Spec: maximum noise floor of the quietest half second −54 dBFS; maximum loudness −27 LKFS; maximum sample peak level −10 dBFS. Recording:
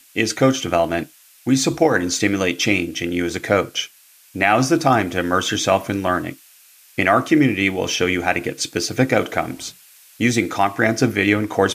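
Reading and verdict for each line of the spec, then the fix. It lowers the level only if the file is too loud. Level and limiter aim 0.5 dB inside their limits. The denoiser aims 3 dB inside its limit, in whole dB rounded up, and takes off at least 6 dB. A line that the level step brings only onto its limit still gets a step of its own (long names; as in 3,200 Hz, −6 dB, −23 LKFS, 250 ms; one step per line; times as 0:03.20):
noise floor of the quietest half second −50 dBFS: out of spec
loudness −19.0 LKFS: out of spec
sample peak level −1.5 dBFS: out of spec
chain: level −8.5 dB
brickwall limiter −10.5 dBFS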